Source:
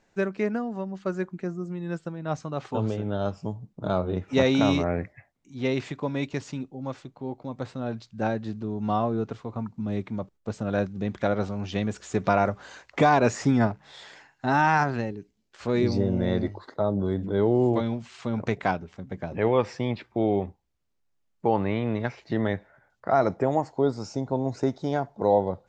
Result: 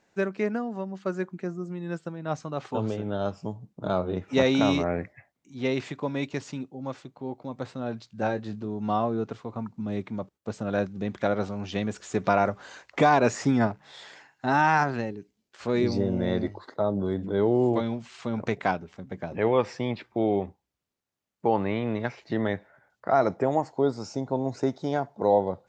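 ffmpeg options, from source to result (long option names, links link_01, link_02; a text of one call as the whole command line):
ffmpeg -i in.wav -filter_complex "[0:a]asettb=1/sr,asplit=3[link_01][link_02][link_03];[link_01]atrim=end=8.084[link_04];[link_02]atrim=start=8.08:end=8.66,asetpts=PTS-STARTPTS,afade=type=in:duration=0.004:curve=qsin,afade=type=out:start_time=0.576:duration=0.004:curve=qsin,asplit=2[link_05][link_06];[link_06]adelay=20,volume=-9.5dB[link_07];[link_05][link_07]amix=inputs=2:normalize=0,atrim=end_sample=25578[link_08];[link_03]atrim=start=8.656[link_09];[link_04][link_08]acrossfade=duration=0.004:curve1=hsin:curve2=qsin[link_10];[link_10][link_09]acrossfade=duration=0.004:curve1=qsin:curve2=hsin,highpass=frequency=130:poles=1" out.wav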